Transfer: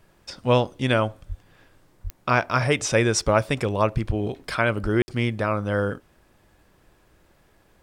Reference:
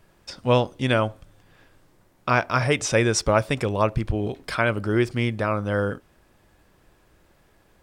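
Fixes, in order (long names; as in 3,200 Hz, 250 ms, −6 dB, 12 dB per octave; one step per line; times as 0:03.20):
click removal
high-pass at the plosives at 0:01.28/0:02.03/0:04.82
ambience match 0:05.02–0:05.08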